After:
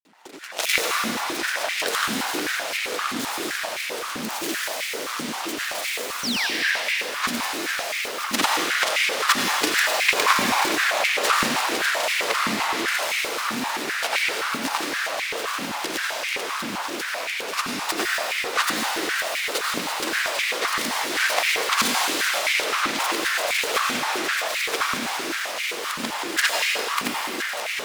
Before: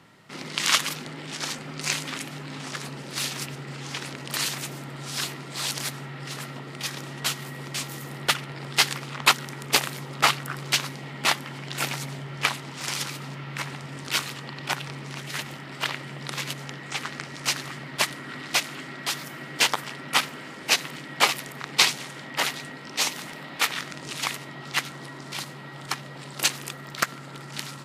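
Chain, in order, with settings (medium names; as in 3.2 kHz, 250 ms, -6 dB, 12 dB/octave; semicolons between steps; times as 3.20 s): time reversed locally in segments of 82 ms; echo with a slow build-up 187 ms, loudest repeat 5, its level -11 dB; granulator, pitch spread up and down by 12 st; half-wave rectifier; painted sound fall, 6.23–6.47 s, 1.5–6.2 kHz -29 dBFS; reverberation RT60 4.4 s, pre-delay 76 ms, DRR -3.5 dB; step-sequenced high-pass 7.7 Hz 240–2200 Hz; trim +1.5 dB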